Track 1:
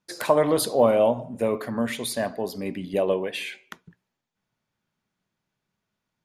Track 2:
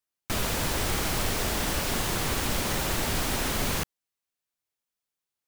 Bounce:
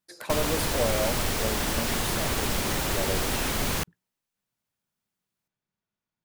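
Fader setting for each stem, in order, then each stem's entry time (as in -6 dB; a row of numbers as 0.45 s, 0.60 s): -9.5 dB, +0.5 dB; 0.00 s, 0.00 s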